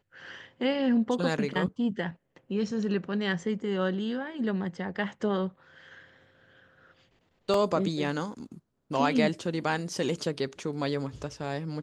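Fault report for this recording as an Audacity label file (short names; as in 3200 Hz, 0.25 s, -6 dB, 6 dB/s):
7.540000	7.540000	gap 2.5 ms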